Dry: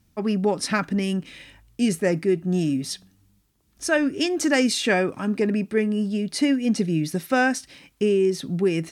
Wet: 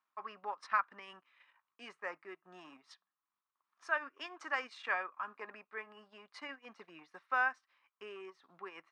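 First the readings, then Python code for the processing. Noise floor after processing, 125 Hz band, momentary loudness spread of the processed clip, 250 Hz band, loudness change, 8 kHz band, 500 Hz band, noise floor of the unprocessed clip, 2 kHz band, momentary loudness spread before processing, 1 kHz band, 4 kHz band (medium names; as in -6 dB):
under -85 dBFS, under -40 dB, 20 LU, -36.5 dB, -15.5 dB, -33.5 dB, -25.5 dB, -64 dBFS, -10.0 dB, 7 LU, -7.5 dB, -21.5 dB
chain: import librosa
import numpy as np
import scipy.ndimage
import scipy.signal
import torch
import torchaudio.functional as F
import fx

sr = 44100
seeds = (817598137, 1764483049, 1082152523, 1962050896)

y = fx.transient(x, sr, attack_db=0, sustain_db=-12)
y = fx.ladder_bandpass(y, sr, hz=1200.0, resonance_pct=70)
y = y * 10.0 ** (1.0 / 20.0)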